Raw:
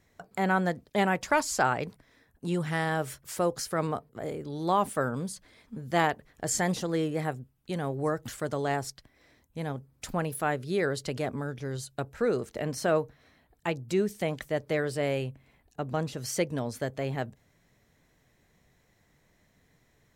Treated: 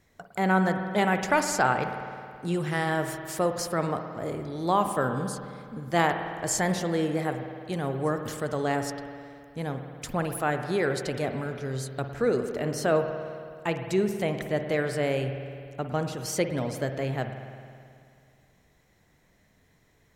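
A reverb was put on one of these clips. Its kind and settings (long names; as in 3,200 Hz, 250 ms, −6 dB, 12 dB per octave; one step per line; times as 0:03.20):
spring reverb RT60 2.3 s, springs 53 ms, chirp 80 ms, DRR 6.5 dB
level +1.5 dB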